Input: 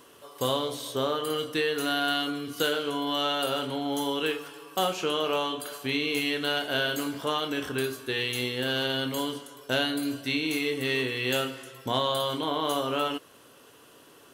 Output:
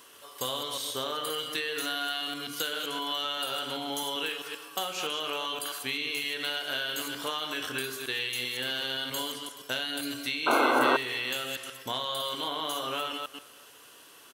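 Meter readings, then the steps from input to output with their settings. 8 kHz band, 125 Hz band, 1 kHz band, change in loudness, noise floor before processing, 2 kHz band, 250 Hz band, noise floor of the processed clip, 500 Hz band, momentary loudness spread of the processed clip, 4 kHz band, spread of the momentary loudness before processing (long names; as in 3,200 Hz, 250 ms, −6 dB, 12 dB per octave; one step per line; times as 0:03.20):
+1.5 dB, −11.5 dB, −0.5 dB, −2.0 dB, −54 dBFS, −1.0 dB, −7.5 dB, −53 dBFS, −6.0 dB, 8 LU, −0.5 dB, 5 LU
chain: delay that plays each chunk backwards 130 ms, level −7.5 dB
tilt shelving filter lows −6.5 dB, about 790 Hz
downward compressor, threshold −26 dBFS, peak gain reduction 8 dB
sound drawn into the spectrogram noise, 0:10.46–0:10.97, 230–1,600 Hz −21 dBFS
far-end echo of a speakerphone 390 ms, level −23 dB
level −2.5 dB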